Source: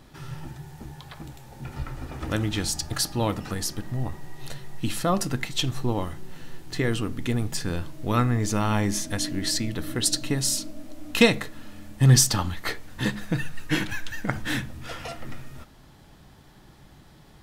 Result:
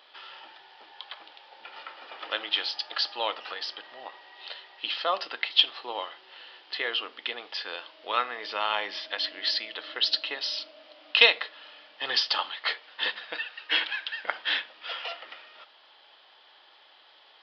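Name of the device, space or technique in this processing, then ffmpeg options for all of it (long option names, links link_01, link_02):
musical greeting card: -af "aresample=11025,aresample=44100,highpass=frequency=560:width=0.5412,highpass=frequency=560:width=1.3066,equalizer=frequency=710:width_type=o:width=0.3:gain=-2.5,equalizer=frequency=3100:width_type=o:width=0.49:gain=10"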